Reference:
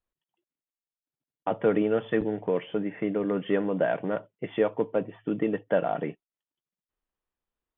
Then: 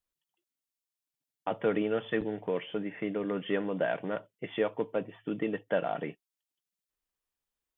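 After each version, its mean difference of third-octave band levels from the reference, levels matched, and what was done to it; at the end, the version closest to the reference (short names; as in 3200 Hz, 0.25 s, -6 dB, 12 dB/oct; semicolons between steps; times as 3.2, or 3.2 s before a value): 1.5 dB: high shelf 2200 Hz +10.5 dB; gain -5.5 dB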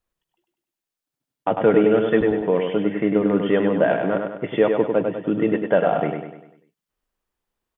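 3.5 dB: feedback echo 99 ms, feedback 47%, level -5 dB; gain +6.5 dB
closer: first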